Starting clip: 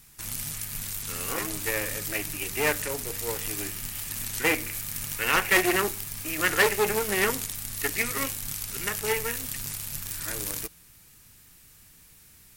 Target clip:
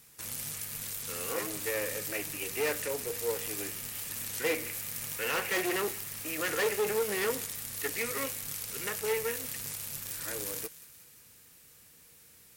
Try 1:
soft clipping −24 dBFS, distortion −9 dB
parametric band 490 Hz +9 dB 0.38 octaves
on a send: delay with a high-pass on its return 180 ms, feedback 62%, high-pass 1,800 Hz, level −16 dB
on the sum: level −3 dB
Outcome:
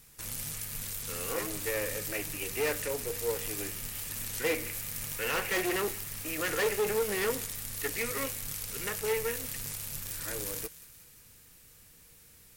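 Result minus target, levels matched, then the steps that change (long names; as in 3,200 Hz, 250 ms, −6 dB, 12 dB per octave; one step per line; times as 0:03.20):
125 Hz band +4.0 dB
add after soft clipping: high-pass filter 150 Hz 6 dB per octave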